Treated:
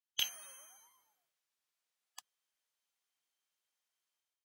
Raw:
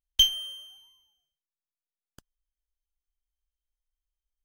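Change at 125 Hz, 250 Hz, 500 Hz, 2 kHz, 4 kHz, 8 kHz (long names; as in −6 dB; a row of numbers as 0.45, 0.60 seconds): below −20 dB, below −10 dB, −3.0 dB, +0.5 dB, −16.0 dB, −8.0 dB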